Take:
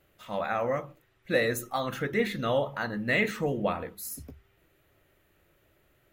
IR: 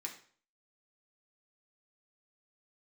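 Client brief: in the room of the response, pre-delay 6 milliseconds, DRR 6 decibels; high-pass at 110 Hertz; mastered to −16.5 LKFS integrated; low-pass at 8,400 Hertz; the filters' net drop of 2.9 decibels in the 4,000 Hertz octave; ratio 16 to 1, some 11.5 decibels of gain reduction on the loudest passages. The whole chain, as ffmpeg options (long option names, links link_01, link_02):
-filter_complex "[0:a]highpass=110,lowpass=8400,equalizer=frequency=4000:width_type=o:gain=-3.5,acompressor=threshold=-32dB:ratio=16,asplit=2[link_01][link_02];[1:a]atrim=start_sample=2205,adelay=6[link_03];[link_02][link_03]afir=irnorm=-1:irlink=0,volume=-4.5dB[link_04];[link_01][link_04]amix=inputs=2:normalize=0,volume=20.5dB"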